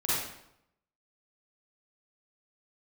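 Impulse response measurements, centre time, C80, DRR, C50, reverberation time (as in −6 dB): 84 ms, 1.0 dB, −10.0 dB, −5.0 dB, 0.75 s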